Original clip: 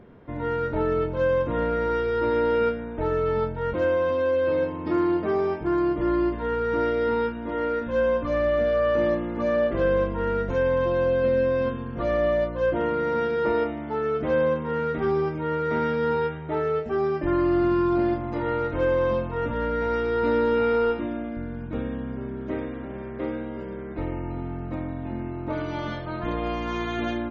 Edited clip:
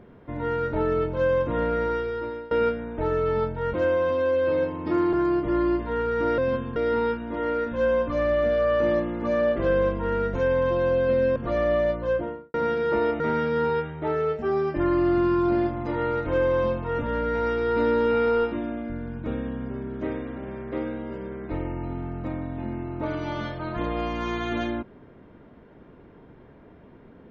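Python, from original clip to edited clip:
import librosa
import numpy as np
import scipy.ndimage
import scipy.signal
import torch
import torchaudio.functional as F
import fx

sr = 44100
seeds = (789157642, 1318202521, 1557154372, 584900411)

y = fx.studio_fade_out(x, sr, start_s=12.54, length_s=0.53)
y = fx.edit(y, sr, fx.fade_out_to(start_s=1.81, length_s=0.7, floor_db=-23.5),
    fx.cut(start_s=5.13, length_s=0.53),
    fx.move(start_s=11.51, length_s=0.38, to_s=6.91),
    fx.cut(start_s=13.73, length_s=1.94), tone=tone)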